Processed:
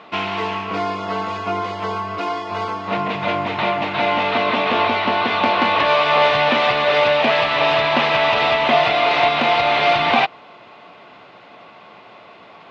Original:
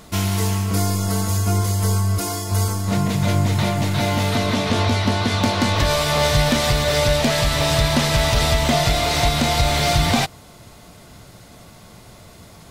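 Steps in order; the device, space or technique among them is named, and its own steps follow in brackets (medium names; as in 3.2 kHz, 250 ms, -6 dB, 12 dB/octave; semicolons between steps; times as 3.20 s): phone earpiece (cabinet simulation 360–3300 Hz, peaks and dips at 790 Hz +4 dB, 1.1 kHz +5 dB, 2.6 kHz +6 dB); trim +3.5 dB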